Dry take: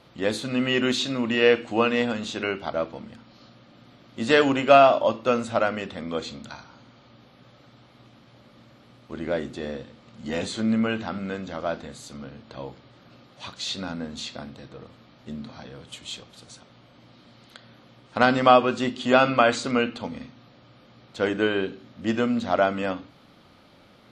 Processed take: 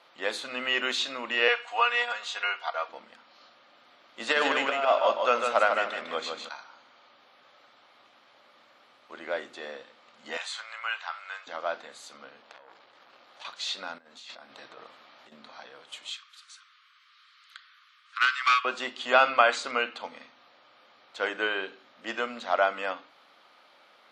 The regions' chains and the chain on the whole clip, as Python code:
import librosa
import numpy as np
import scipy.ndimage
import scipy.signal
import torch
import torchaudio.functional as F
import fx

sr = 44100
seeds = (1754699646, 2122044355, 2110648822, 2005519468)

y = fx.chain(x, sr, fx.cheby1_highpass(hz=850.0, order=2),
    fx.comb(ms=4.2, depth=0.82), at=(1.48, 2.89))
y = fx.chain(y, sr, fx.over_compress(threshold_db=-18.0, ratio=-0.5),
    fx.echo_feedback(ms=152, feedback_pct=28, wet_db=-5), at=(4.2, 6.49))
y = fx.chain(y, sr, fx.highpass(hz=870.0, slope=24),
    fx.doubler(ms=27.0, db=-14), at=(10.37, 11.47))
y = fx.chain(y, sr, fx.over_compress(threshold_db=-42.0, ratio=-1.0),
    fx.transformer_sat(knee_hz=2700.0), at=(12.42, 13.45))
y = fx.chain(y, sr, fx.over_compress(threshold_db=-42.0, ratio=-1.0),
    fx.notch(hz=490.0, q=15.0), at=(13.98, 15.32))
y = fx.chain(y, sr, fx.steep_highpass(hz=1100.0, slope=96),
    fx.doppler_dist(depth_ms=0.23), at=(16.1, 18.65))
y = scipy.signal.sosfilt(scipy.signal.butter(2, 810.0, 'highpass', fs=sr, output='sos'), y)
y = fx.high_shelf(y, sr, hz=4100.0, db=-8.5)
y = y * 10.0 ** (2.0 / 20.0)